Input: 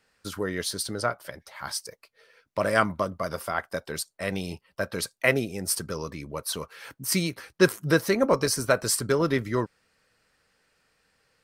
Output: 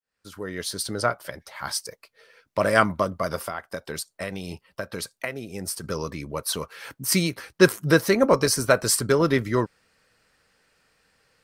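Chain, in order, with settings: fade-in on the opening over 1.05 s; 3.43–5.84 s: compression 12:1, threshold -31 dBFS, peak gain reduction 16 dB; trim +3.5 dB

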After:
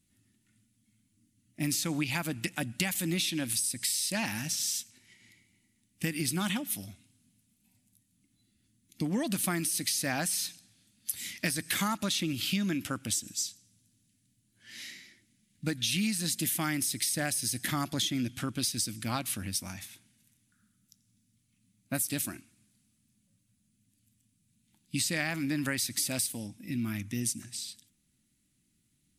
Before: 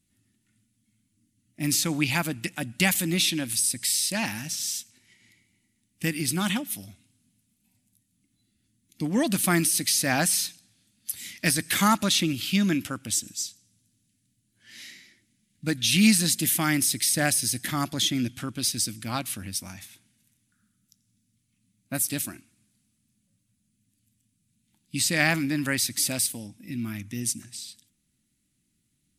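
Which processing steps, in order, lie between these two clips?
compression 12:1, threshold -27 dBFS, peak gain reduction 13 dB

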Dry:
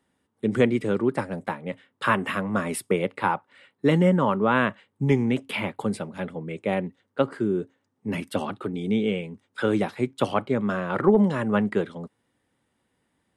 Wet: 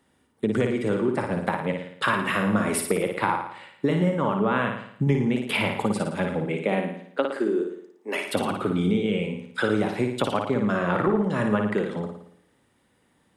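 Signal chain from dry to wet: 6.44–8.26 s: high-pass 150 Hz -> 440 Hz 24 dB/octave; compression 6:1, threshold -27 dBFS, peak gain reduction 13.5 dB; flutter echo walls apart 9.7 m, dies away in 0.66 s; trim +6 dB

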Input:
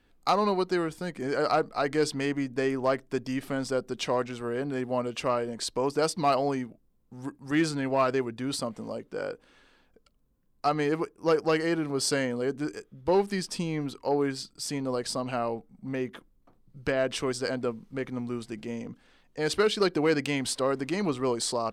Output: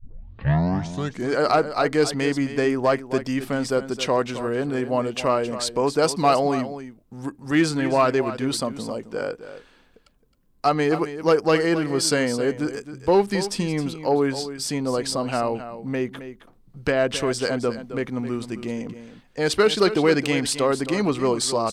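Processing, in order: tape start-up on the opening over 1.27 s; delay 266 ms -12 dB; trim +6 dB

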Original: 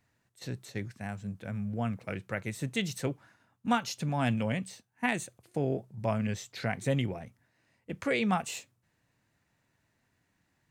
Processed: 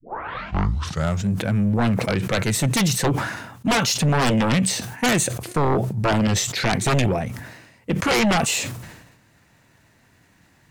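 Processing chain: tape start-up on the opening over 1.28 s; sine folder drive 13 dB, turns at -15 dBFS; decay stretcher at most 54 dB/s

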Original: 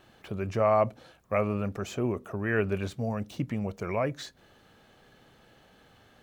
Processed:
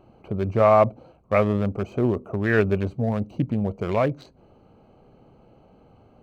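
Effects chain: local Wiener filter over 25 samples; trim +7.5 dB

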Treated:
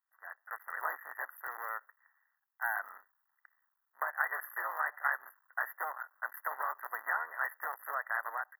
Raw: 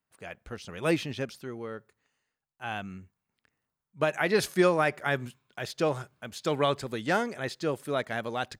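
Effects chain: cycle switcher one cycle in 3, muted; compression 10:1, threshold -34 dBFS, peak gain reduction 15.5 dB; high-pass 980 Hz 24 dB/octave; level rider gain up to 10.5 dB; brick-wall FIR band-stop 2–11 kHz

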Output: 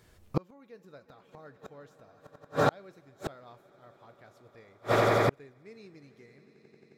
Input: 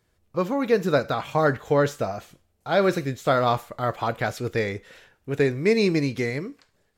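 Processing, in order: echo with a slow build-up 89 ms, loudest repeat 8, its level -18 dB; inverted gate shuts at -21 dBFS, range -39 dB; trim +8.5 dB

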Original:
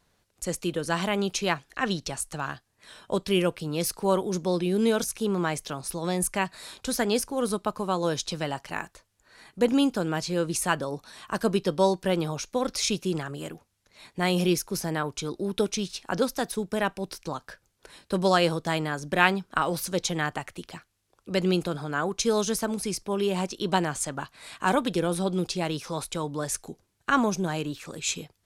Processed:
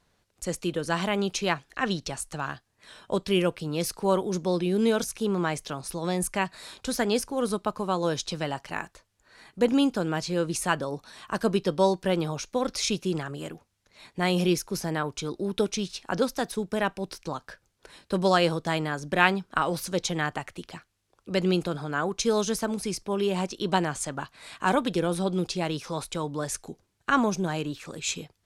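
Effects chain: treble shelf 11 kHz -8 dB

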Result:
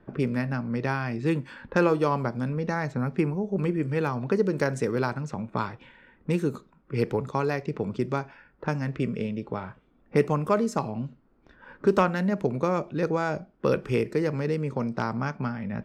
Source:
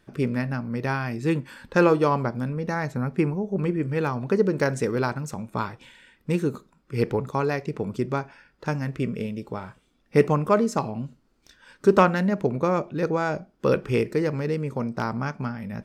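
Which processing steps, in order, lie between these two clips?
level-controlled noise filter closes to 1.1 kHz, open at -21 dBFS; three bands compressed up and down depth 40%; trim -2 dB

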